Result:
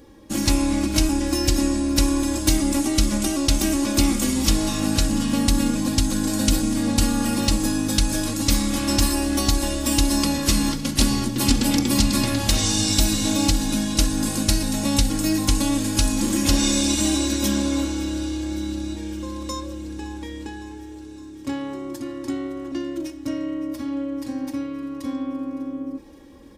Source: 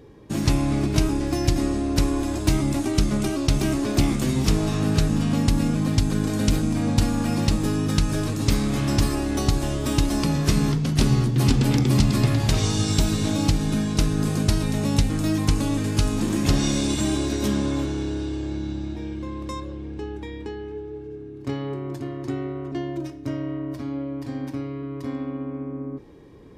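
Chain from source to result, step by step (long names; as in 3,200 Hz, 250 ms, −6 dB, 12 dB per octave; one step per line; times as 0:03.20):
high-shelf EQ 3,900 Hz +11 dB
comb filter 3.6 ms, depth 78%
feedback echo with a high-pass in the loop 562 ms, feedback 73%, level −19.5 dB
in parallel at −9 dB: gain into a clipping stage and back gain 8.5 dB
on the sum: level −4.5 dB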